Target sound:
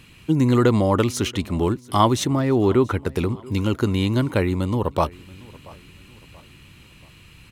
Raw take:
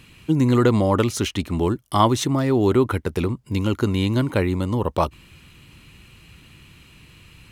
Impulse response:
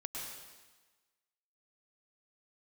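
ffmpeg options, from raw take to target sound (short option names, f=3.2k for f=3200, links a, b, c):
-filter_complex "[0:a]asettb=1/sr,asplit=3[a][b][c];[a]atrim=end=2.254[d];[b]atrim=start=2.25:end=3.02,asetpts=PTS-STARTPTS,afade=t=in:d=0.004:c=qsin,afade=t=out:st=0.766:d=0.004:c=qsin,acrossover=split=3700[e][f];[f]acompressor=threshold=-49dB:ratio=4:attack=1:release=60[g];[e][g]amix=inputs=2:normalize=0[h];[c]atrim=start=3.016[i];[d][h]acrossfade=d=0.004:c1=hsin:c2=qsin[j];[j][i]acrossfade=d=0.004:c1=qsin:c2=hsin,aecho=1:1:682|1364|2046:0.0708|0.0297|0.0125"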